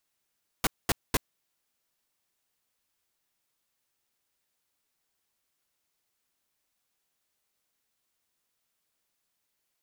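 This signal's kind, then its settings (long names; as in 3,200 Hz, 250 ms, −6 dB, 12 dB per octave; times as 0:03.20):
noise bursts pink, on 0.03 s, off 0.22 s, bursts 3, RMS −24 dBFS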